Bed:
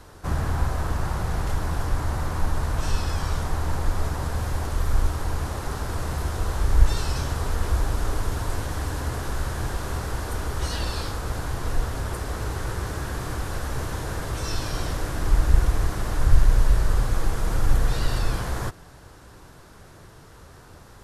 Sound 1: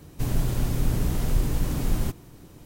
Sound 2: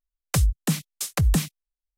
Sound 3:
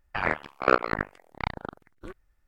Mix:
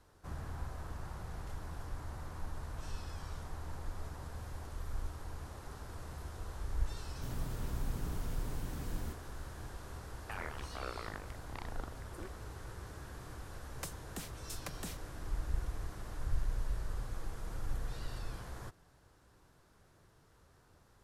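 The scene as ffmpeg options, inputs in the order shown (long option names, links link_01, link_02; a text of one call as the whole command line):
ffmpeg -i bed.wav -i cue0.wav -i cue1.wav -i cue2.wav -filter_complex "[0:a]volume=-18dB[link_01];[3:a]acompressor=threshold=-42dB:ratio=4:attack=2.2:release=27:knee=1:detection=rms[link_02];[2:a]highpass=260[link_03];[1:a]atrim=end=2.65,asetpts=PTS-STARTPTS,volume=-15.5dB,afade=type=in:duration=0.004:curve=hsin,afade=type=out:start_time=2.646:duration=0.004:curve=hsin,adelay=7020[link_04];[link_02]atrim=end=2.47,asetpts=PTS-STARTPTS,afade=type=in:duration=0.004:curve=hsin,afade=type=out:start_time=2.466:duration=0.004:curve=hsin,adelay=10150[link_05];[link_03]atrim=end=1.97,asetpts=PTS-STARTPTS,volume=-17dB,afade=type=in:duration=0.004:curve=hsin,afade=type=out:start_time=1.966:duration=0.004:curve=hsin,adelay=13490[link_06];[link_01][link_04][link_05][link_06]amix=inputs=4:normalize=0" out.wav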